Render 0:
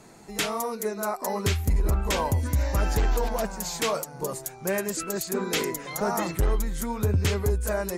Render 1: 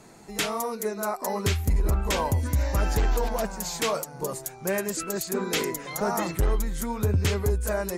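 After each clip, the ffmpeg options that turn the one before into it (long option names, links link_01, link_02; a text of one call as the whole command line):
ffmpeg -i in.wav -af anull out.wav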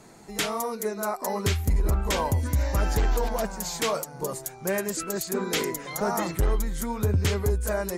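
ffmpeg -i in.wav -af "bandreject=frequency=2600:width=29" out.wav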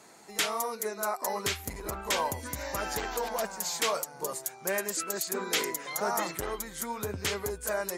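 ffmpeg -i in.wav -af "highpass=frequency=680:poles=1" out.wav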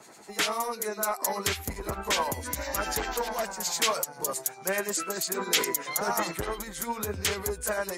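ffmpeg -i in.wav -filter_complex "[0:a]acrossover=split=2000[link_01][link_02];[link_01]aeval=exprs='val(0)*(1-0.7/2+0.7/2*cos(2*PI*10*n/s))':channel_layout=same[link_03];[link_02]aeval=exprs='val(0)*(1-0.7/2-0.7/2*cos(2*PI*10*n/s))':channel_layout=same[link_04];[link_03][link_04]amix=inputs=2:normalize=0,acrossover=split=310|980|6500[link_05][link_06][link_07][link_08];[link_06]asoftclip=type=tanh:threshold=-35dB[link_09];[link_05][link_09][link_07][link_08]amix=inputs=4:normalize=0,volume=6.5dB" out.wav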